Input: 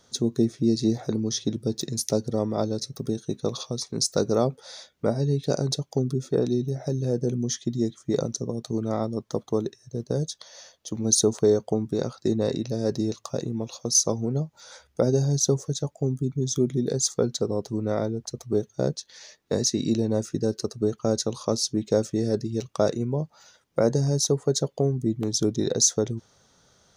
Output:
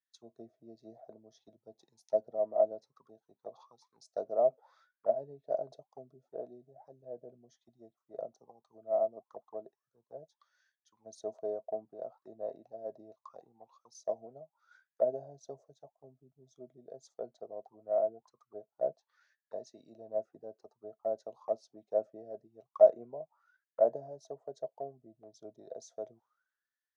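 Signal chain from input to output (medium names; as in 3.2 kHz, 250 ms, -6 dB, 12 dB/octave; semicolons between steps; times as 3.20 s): auto-wah 650–1800 Hz, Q 18, down, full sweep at -23 dBFS; three bands expanded up and down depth 70%; trim +3.5 dB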